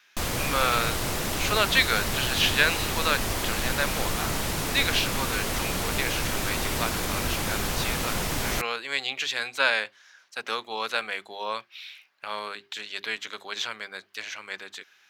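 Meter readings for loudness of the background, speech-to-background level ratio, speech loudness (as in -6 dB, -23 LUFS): -28.0 LUFS, -0.5 dB, -28.5 LUFS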